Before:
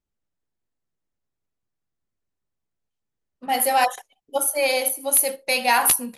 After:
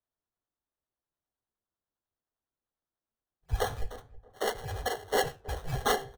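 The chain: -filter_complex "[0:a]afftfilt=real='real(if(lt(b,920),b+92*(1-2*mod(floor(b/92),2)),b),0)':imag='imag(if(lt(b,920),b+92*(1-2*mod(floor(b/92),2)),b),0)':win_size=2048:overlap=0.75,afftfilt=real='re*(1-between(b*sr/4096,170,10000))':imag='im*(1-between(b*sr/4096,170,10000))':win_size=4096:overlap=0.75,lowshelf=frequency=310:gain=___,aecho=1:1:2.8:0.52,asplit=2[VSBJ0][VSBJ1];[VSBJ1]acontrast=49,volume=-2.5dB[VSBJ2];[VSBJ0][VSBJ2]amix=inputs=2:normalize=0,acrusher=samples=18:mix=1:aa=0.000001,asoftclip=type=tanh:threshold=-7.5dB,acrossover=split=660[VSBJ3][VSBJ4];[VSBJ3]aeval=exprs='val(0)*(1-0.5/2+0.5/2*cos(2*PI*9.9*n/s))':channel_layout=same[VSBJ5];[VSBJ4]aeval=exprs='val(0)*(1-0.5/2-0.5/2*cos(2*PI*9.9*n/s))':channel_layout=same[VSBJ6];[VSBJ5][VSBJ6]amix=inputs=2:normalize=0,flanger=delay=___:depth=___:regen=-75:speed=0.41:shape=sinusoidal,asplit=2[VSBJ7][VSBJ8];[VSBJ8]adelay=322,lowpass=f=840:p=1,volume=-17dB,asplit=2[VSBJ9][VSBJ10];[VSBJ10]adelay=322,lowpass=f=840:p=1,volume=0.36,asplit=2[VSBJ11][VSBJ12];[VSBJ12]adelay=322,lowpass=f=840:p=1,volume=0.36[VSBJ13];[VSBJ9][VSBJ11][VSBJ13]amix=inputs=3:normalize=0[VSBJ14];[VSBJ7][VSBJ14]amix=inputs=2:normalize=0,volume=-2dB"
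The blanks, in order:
6.5, 7.5, 8.9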